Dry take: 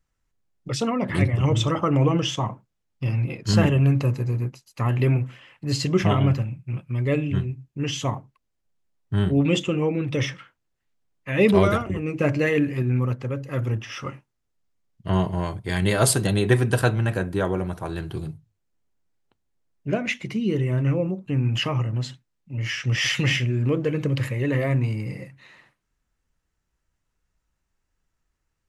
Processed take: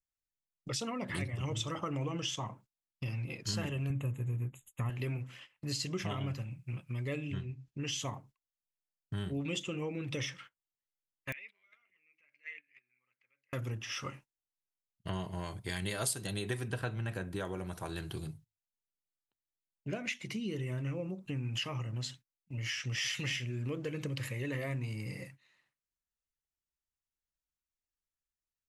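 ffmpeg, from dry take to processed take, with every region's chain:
ffmpeg -i in.wav -filter_complex "[0:a]asettb=1/sr,asplit=3[link_01][link_02][link_03];[link_01]atrim=end=3.904[link_04];[link_02]atrim=start=3.9:end=4.9,asetpts=PTS-STARTPTS,afade=type=in:duration=0.004:curve=qsin,afade=type=out:start_time=0.996:duration=0.004:curve=qsin,asuperstop=centerf=5000:order=20:qfactor=1.8,lowshelf=frequency=160:gain=11[link_05];[link_03]atrim=start=4.896[link_06];[link_04][link_05]acrossfade=duration=0.004:curve1=hsin:curve2=qsin[link_07];[link_07][link_06]acrossfade=duration=0.004:curve1=qsin:curve2=hsin,asettb=1/sr,asplit=3[link_08][link_09][link_10];[link_08]atrim=end=7.344[link_11];[link_09]atrim=start=7.34:end=7.85,asetpts=PTS-STARTPTS,afade=type=in:duration=0.004:curve=qsin,afade=type=out:start_time=0.506:duration=0.004:curve=qsin,lowpass=5800,acompressor=mode=upward:threshold=-40dB:ratio=2.5:attack=3.2:release=140:knee=2.83:detection=peak[link_12];[link_10]atrim=start=7.846[link_13];[link_11][link_12]acrossfade=duration=0.004:curve1=hsin:curve2=qsin[link_14];[link_14][link_13]acrossfade=duration=0.004:curve1=qsin:curve2=hsin,asettb=1/sr,asplit=3[link_15][link_16][link_17];[link_15]atrim=end=11.324[link_18];[link_16]atrim=start=11.32:end=13.53,asetpts=PTS-STARTPTS,afade=type=in:duration=0.004:curve=qsin,afade=type=out:start_time=2.206:duration=0.004:curve=qsin,acompressor=threshold=-26dB:ratio=16:attack=3.2:release=140:knee=1:detection=peak,bandpass=frequency=2200:width_type=q:width=6.5,aeval=exprs='(mod(22.4*val(0)+1,2)-1)/22.4':channel_layout=same[link_19];[link_17]atrim=start=13.526[link_20];[link_18][link_19]acrossfade=duration=0.004:curve1=hsin:curve2=qsin[link_21];[link_21][link_20]acrossfade=duration=0.004:curve1=qsin:curve2=hsin,asettb=1/sr,asplit=3[link_22][link_23][link_24];[link_22]atrim=end=16.684[link_25];[link_23]atrim=start=16.68:end=17.36,asetpts=PTS-STARTPTS,afade=type=in:duration=0.004:curve=qsin,afade=type=out:start_time=0.676:duration=0.004:curve=qsin,acrossover=split=3500[link_26][link_27];[link_27]acompressor=threshold=-42dB:ratio=4:attack=1:release=60[link_28];[link_26][link_28]amix=inputs=2:normalize=0,bass=frequency=250:gain=2,treble=frequency=4000:gain=-5[link_29];[link_24]atrim=start=17.356[link_30];[link_25][link_29]acrossfade=duration=0.004:curve1=hsin:curve2=qsin[link_31];[link_31][link_30]acrossfade=duration=0.004:curve1=qsin:curve2=hsin,agate=range=-17dB:threshold=-45dB:ratio=16:detection=peak,highshelf=frequency=2400:gain=11.5,acompressor=threshold=-28dB:ratio=3,volume=-8dB" out.wav

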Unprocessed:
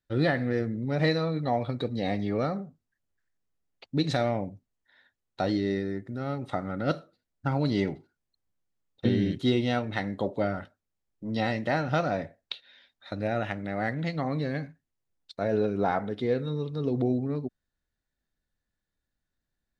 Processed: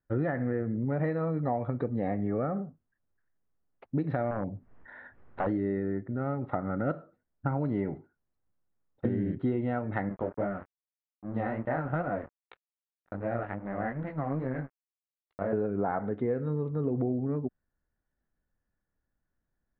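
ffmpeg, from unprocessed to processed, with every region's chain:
ffmpeg -i in.wav -filter_complex "[0:a]asettb=1/sr,asplit=3[link_01][link_02][link_03];[link_01]atrim=end=2.144[link_04];[link_02]atrim=start=2.14:end=2.62,asetpts=PTS-STARTPTS,afade=type=in:duration=0.004:curve=qsin,afade=type=out:start_time=0.476:duration=0.004:curve=qsin,lowpass=2700,bandreject=frequency=960:width=8.1[link_05];[link_03]atrim=start=2.616[link_06];[link_04][link_05]acrossfade=duration=0.004:curve1=hsin:curve2=qsin[link_07];[link_07][link_06]acrossfade=duration=0.004:curve1=qsin:curve2=hsin,asettb=1/sr,asplit=3[link_08][link_09][link_10];[link_08]atrim=end=4.314[link_11];[link_09]atrim=start=4.31:end=5.47,asetpts=PTS-STARTPTS,afade=type=in:duration=0.004:curve=qsin,afade=type=out:start_time=1.156:duration=0.004:curve=qsin,acompressor=mode=upward:threshold=-32dB:ratio=2.5:attack=3.2:release=140:knee=2.83:detection=peak,aeval=exprs='0.0668*(abs(mod(val(0)/0.0668+3,4)-2)-1)':channel_layout=same[link_12];[link_10]atrim=start=5.466[link_13];[link_11][link_12]acrossfade=duration=0.004:curve1=hsin:curve2=qsin[link_14];[link_14][link_13]acrossfade=duration=0.004:curve1=qsin:curve2=hsin,asettb=1/sr,asplit=3[link_15][link_16][link_17];[link_15]atrim=end=10.094[link_18];[link_16]atrim=start=10.09:end=15.53,asetpts=PTS-STARTPTS,afade=type=in:duration=0.004:curve=qsin,afade=type=out:start_time=5.436:duration=0.004:curve=qsin,flanger=delay=15:depth=7.3:speed=2.5,aeval=exprs='sgn(val(0))*max(abs(val(0))-0.00631,0)':channel_layout=same[link_19];[link_17]atrim=start=15.526[link_20];[link_18][link_19]acrossfade=duration=0.004:curve1=hsin:curve2=qsin[link_21];[link_21][link_20]acrossfade=duration=0.004:curve1=qsin:curve2=hsin,lowpass=frequency=1700:width=0.5412,lowpass=frequency=1700:width=1.3066,acompressor=threshold=-28dB:ratio=6,volume=2.5dB" out.wav

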